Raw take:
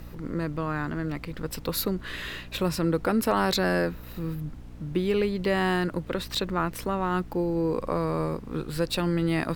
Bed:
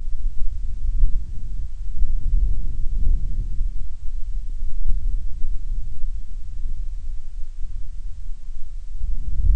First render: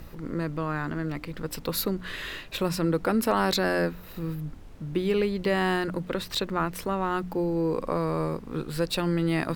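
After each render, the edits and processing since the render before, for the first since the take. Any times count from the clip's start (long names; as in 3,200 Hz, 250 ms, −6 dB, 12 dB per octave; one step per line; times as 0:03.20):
hum removal 60 Hz, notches 5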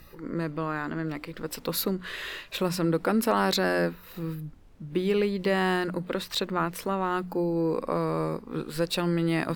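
noise reduction from a noise print 9 dB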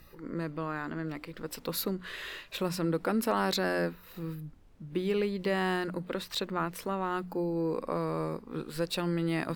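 level −4.5 dB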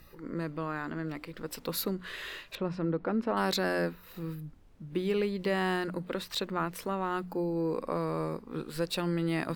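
0:02.55–0:03.37: head-to-tape spacing loss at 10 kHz 31 dB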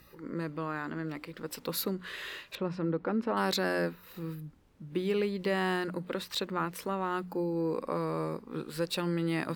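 high-pass filter 84 Hz 6 dB per octave
notch filter 680 Hz, Q 12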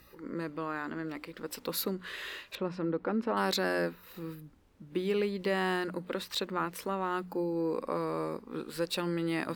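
parametric band 150 Hz −7.5 dB 0.37 octaves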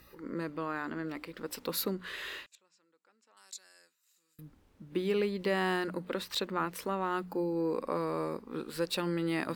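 0:02.46–0:04.39: resonant band-pass 7,300 Hz, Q 5.4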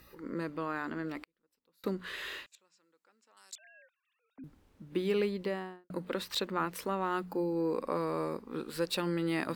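0:01.19–0:01.84: gate with flip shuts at −36 dBFS, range −38 dB
0:03.55–0:04.44: three sine waves on the formant tracks
0:05.23–0:05.90: fade out and dull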